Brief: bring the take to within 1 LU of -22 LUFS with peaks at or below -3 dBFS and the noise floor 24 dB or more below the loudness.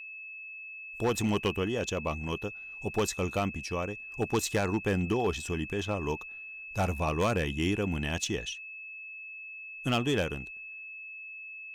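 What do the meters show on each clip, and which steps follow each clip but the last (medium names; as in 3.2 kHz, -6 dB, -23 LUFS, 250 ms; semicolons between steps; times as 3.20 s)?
clipped samples 0.5%; clipping level -21.0 dBFS; steady tone 2.6 kHz; tone level -41 dBFS; loudness -32.5 LUFS; peak level -21.0 dBFS; loudness target -22.0 LUFS
-> clip repair -21 dBFS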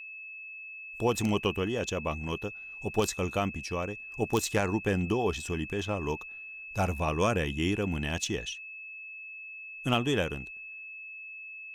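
clipped samples 0.0%; steady tone 2.6 kHz; tone level -41 dBFS
-> band-stop 2.6 kHz, Q 30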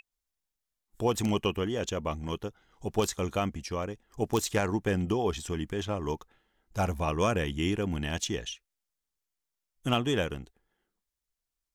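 steady tone not found; loudness -31.0 LUFS; peak level -12.5 dBFS; loudness target -22.0 LUFS
-> trim +9 dB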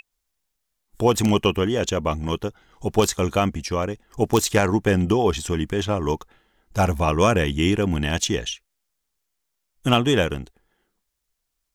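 loudness -22.0 LUFS; peak level -3.5 dBFS; noise floor -78 dBFS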